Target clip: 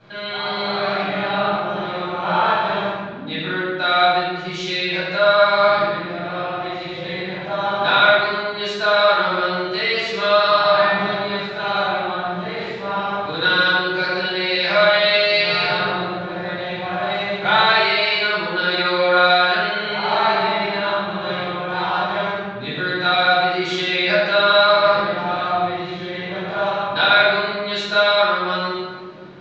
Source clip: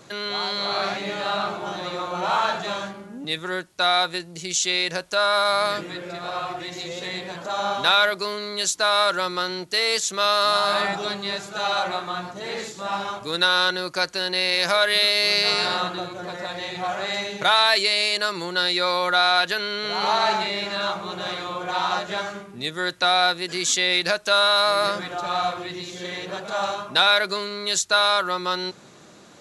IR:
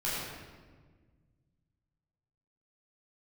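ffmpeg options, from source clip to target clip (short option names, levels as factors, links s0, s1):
-filter_complex "[0:a]lowpass=f=3800:w=0.5412,lowpass=f=3800:w=1.3066[s0];[1:a]atrim=start_sample=2205[s1];[s0][s1]afir=irnorm=-1:irlink=0,volume=0.75"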